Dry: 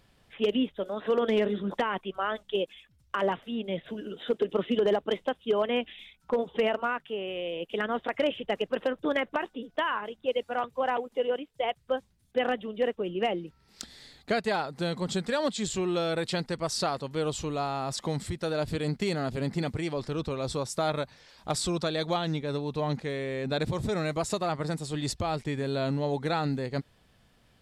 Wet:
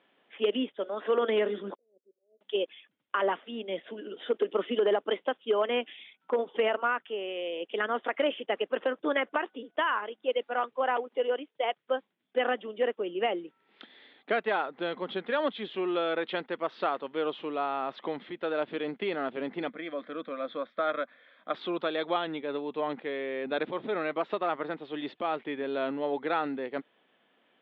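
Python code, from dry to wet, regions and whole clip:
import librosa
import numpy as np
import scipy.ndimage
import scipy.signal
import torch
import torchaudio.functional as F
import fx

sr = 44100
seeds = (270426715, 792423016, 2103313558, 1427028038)

y = fx.chain(x, sr, fx.auto_swell(attack_ms=165.0),
    fx.steep_lowpass(hz=570.0, slope=72),
    fx.differentiator(), at=(1.75, 2.41))
y = fx.chain(y, sr, fx.lowpass_res(hz=3100.0, q=5.0),
    fx.fixed_phaser(hz=580.0, stages=8), at=(19.69, 21.54))
y = scipy.signal.sosfilt(scipy.signal.butter(4, 270.0, 'highpass', fs=sr, output='sos'), y)
y = fx.dynamic_eq(y, sr, hz=1300.0, q=2.1, threshold_db=-43.0, ratio=4.0, max_db=4)
y = scipy.signal.sosfilt(scipy.signal.cheby1(5, 1.0, 3400.0, 'lowpass', fs=sr, output='sos'), y)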